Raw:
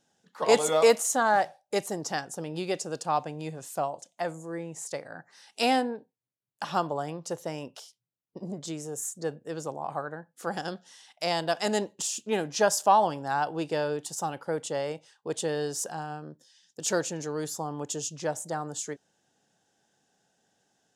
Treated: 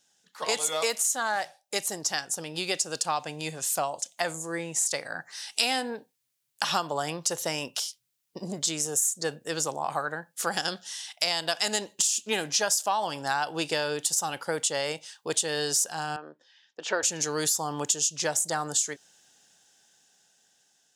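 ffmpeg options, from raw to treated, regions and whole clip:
-filter_complex "[0:a]asettb=1/sr,asplit=3[s0][s1][s2];[s0]atrim=end=16.164[s3];[s1]atrim=start=16.16:end=17.03,asetpts=PTS-STARTPTS,afade=t=in:d=0.004:c=qsin,afade=t=out:st=0.866:d=0.004:c=qsin,highpass=390,lowpass=2500,aemphasis=mode=reproduction:type=75kf[s4];[s2]atrim=start=17.026[s5];[s3][s4]acrossfade=d=0.004:c1=hsin:c2=qsin[s6];[s6][s5]acrossfade=d=0.004:c1=qsin:c2=hsin,dynaudnorm=f=740:g=7:m=3.16,tiltshelf=f=1400:g=-8.5,acompressor=threshold=0.0708:ratio=6"

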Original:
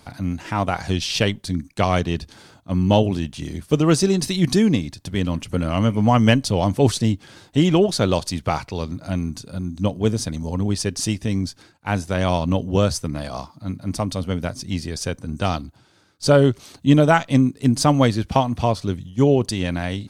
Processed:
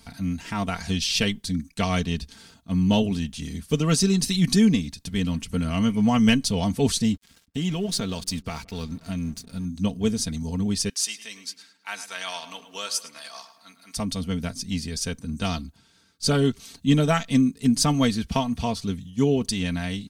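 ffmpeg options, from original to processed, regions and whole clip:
-filter_complex "[0:a]asettb=1/sr,asplit=3[s0][s1][s2];[s0]atrim=end=7.144[s3];[s1]atrim=start=7.14:end=9.65,asetpts=PTS-STARTPTS,afade=t=in:d=0.004:c=qsin,afade=t=out:st=2.506:d=0.004:c=qsin,aeval=exprs='sgn(val(0))*max(abs(val(0))-0.0075,0)':c=same,acompressor=threshold=0.1:ratio=3:attack=3.2:release=140:knee=1:detection=peak,asplit=2[s4][s5];[s5]adelay=169,lowpass=f=1000:p=1,volume=0.0631,asplit=2[s6][s7];[s7]adelay=169,lowpass=f=1000:p=1,volume=0.54,asplit=2[s8][s9];[s9]adelay=169,lowpass=f=1000:p=1,volume=0.54[s10];[s4][s6][s8][s10]amix=inputs=4:normalize=0,atrim=end_sample=110691[s11];[s2]atrim=start=9.646[s12];[s3][s11]acrossfade=d=0.004:c1=hsin:c2=qsin[s13];[s13][s12]acrossfade=d=0.004:c1=qsin:c2=hsin,asettb=1/sr,asplit=3[s14][s15][s16];[s14]atrim=end=10.894[s17];[s15]atrim=start=10.89:end=13.97,asetpts=PTS-STARTPTS,afade=t=in:d=0.004:c=qsin,afade=t=out:st=3.076:d=0.004:c=qsin,highpass=1000,asplit=2[s18][s19];[s19]adelay=107,lowpass=f=3500:p=1,volume=0.251,asplit=2[s20][s21];[s21]adelay=107,lowpass=f=3500:p=1,volume=0.5,asplit=2[s22][s23];[s23]adelay=107,lowpass=f=3500:p=1,volume=0.5,asplit=2[s24][s25];[s25]adelay=107,lowpass=f=3500:p=1,volume=0.5,asplit=2[s26][s27];[s27]adelay=107,lowpass=f=3500:p=1,volume=0.5[s28];[s18][s20][s22][s24][s26][s28]amix=inputs=6:normalize=0,atrim=end_sample=135828[s29];[s16]atrim=start=13.966[s30];[s17][s29]acrossfade=d=0.004:c1=hsin:c2=qsin[s31];[s31][s30]acrossfade=d=0.004:c1=qsin:c2=hsin,equalizer=f=660:t=o:w=2.8:g=-10.5,aecho=1:1:4.4:0.66"

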